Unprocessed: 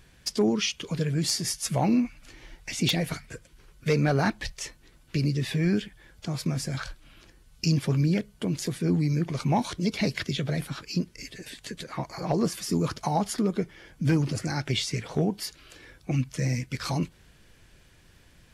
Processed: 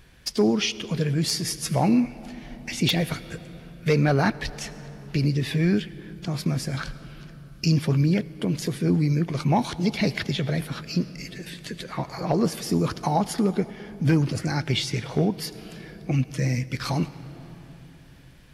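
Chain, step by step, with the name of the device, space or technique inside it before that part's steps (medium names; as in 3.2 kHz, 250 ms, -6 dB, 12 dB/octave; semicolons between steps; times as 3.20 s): peaking EQ 7.4 kHz -5 dB 0.75 oct; compressed reverb return (on a send at -12 dB: reverberation RT60 2.9 s, pre-delay 73 ms + compression, threshold -27 dBFS, peak gain reduction 9.5 dB); on the sum: trim +3 dB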